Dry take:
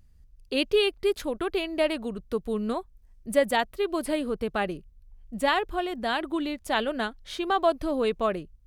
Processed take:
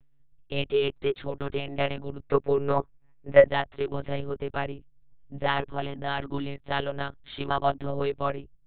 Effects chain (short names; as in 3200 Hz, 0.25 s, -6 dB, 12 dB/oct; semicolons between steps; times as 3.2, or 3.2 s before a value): spectral gain 2.2–3.48, 310–2800 Hz +9 dB; monotone LPC vocoder at 8 kHz 140 Hz; gain -2 dB